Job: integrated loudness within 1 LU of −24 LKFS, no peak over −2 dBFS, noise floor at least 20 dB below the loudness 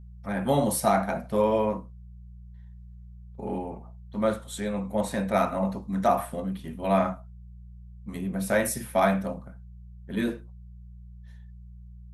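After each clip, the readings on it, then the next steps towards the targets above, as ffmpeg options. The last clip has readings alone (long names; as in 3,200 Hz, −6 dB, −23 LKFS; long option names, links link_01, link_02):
mains hum 60 Hz; hum harmonics up to 180 Hz; level of the hum −43 dBFS; integrated loudness −27.5 LKFS; sample peak −9.5 dBFS; target loudness −24.0 LKFS
→ -af "bandreject=frequency=60:width_type=h:width=4,bandreject=frequency=120:width_type=h:width=4,bandreject=frequency=180:width_type=h:width=4"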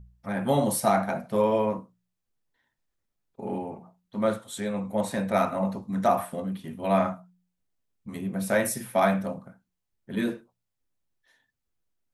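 mains hum none found; integrated loudness −27.5 LKFS; sample peak −9.5 dBFS; target loudness −24.0 LKFS
→ -af "volume=3.5dB"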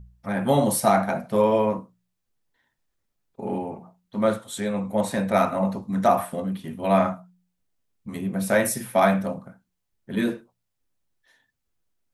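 integrated loudness −24.0 LKFS; sample peak −6.0 dBFS; background noise floor −78 dBFS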